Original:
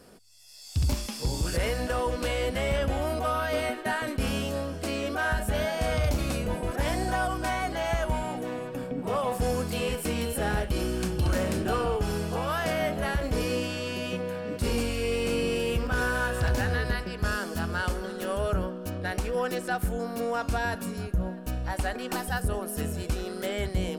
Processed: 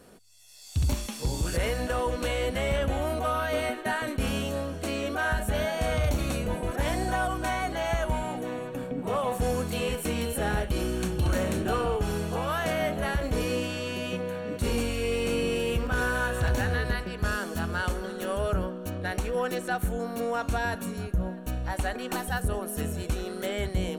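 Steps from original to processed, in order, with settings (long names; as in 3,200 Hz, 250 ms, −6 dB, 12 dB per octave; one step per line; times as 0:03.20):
Butterworth band-reject 5,000 Hz, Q 6.8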